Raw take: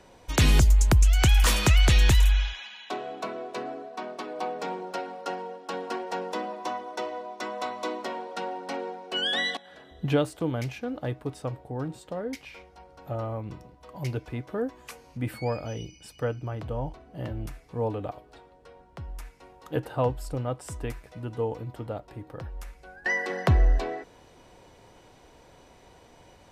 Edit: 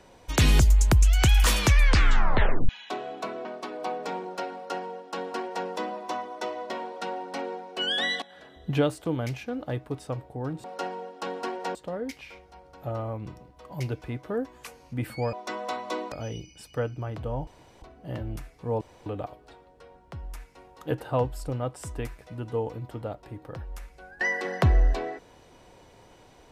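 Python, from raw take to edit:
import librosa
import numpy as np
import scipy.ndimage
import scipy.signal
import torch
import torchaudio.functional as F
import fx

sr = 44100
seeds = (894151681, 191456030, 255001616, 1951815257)

y = fx.edit(x, sr, fx.tape_stop(start_s=1.59, length_s=1.1),
    fx.cut(start_s=3.45, length_s=0.56),
    fx.duplicate(start_s=5.11, length_s=1.11, to_s=11.99),
    fx.move(start_s=7.26, length_s=0.79, to_s=15.57),
    fx.insert_room_tone(at_s=16.92, length_s=0.35),
    fx.insert_room_tone(at_s=17.91, length_s=0.25), tone=tone)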